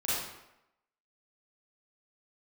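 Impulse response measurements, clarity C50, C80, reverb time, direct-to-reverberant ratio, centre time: −3.0 dB, 1.5 dB, 0.90 s, −10.0 dB, 83 ms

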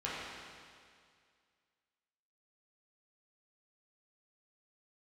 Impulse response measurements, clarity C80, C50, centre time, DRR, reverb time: −0.5 dB, −2.5 dB, 137 ms, −8.5 dB, 2.1 s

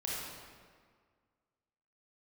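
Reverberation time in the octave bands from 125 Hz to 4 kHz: 1.9, 1.9, 1.8, 1.8, 1.5, 1.2 seconds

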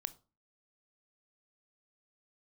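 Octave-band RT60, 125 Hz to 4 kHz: 0.45, 0.45, 0.35, 0.35, 0.25, 0.25 seconds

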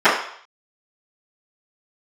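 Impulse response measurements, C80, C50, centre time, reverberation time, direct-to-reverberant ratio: 8.0 dB, 4.5 dB, 39 ms, 0.60 s, −22.0 dB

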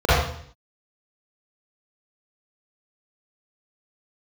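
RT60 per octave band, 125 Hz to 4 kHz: 0.70, 0.70, 0.60, 0.55, 0.60, 0.60 seconds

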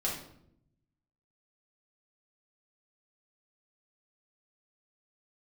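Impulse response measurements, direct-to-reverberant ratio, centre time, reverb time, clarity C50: −5.5 dB, 38 ms, 0.75 s, 4.0 dB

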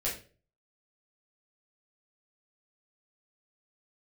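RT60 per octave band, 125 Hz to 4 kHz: 0.60, 0.45, 0.50, 0.30, 0.35, 0.30 seconds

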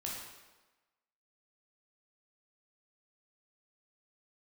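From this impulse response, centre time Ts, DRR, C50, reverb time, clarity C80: 68 ms, −3.5 dB, 1.0 dB, 1.2 s, 3.5 dB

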